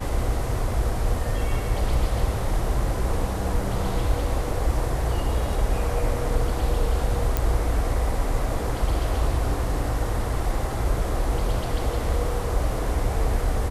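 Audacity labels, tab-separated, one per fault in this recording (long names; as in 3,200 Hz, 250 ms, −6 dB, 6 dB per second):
7.370000	7.370000	click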